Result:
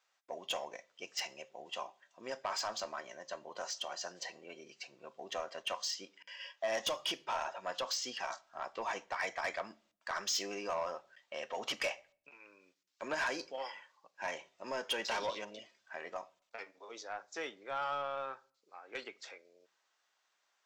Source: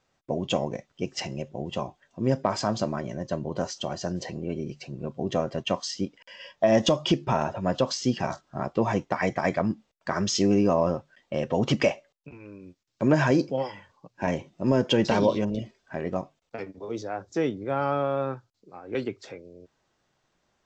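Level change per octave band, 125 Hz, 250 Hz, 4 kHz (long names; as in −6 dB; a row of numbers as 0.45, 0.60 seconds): −34.5, −26.0, −5.5 decibels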